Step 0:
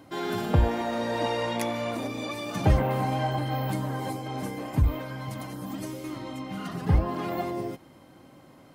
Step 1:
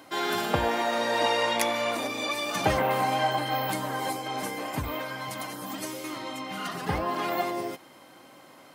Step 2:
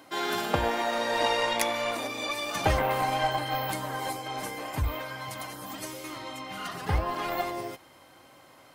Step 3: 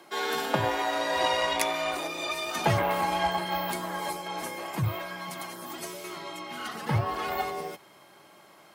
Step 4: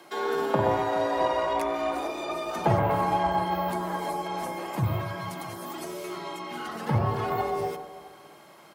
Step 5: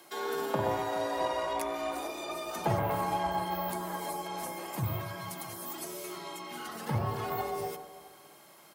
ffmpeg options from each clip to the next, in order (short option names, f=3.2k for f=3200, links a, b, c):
-af "highpass=f=880:p=1,volume=7.5dB"
-af "aeval=exprs='0.335*(cos(1*acos(clip(val(0)/0.335,-1,1)))-cos(1*PI/2))+0.0106*(cos(7*acos(clip(val(0)/0.335,-1,1)))-cos(7*PI/2))':c=same,asubboost=boost=7.5:cutoff=72"
-af "afreqshift=50"
-filter_complex "[0:a]acrossover=split=1300[a][b];[a]aecho=1:1:50|125|237.5|406.2|659.4:0.631|0.398|0.251|0.158|0.1[c];[b]acompressor=threshold=-43dB:ratio=6[d];[c][d]amix=inputs=2:normalize=0,volume=1.5dB"
-af "crystalizer=i=2:c=0,volume=-6.5dB"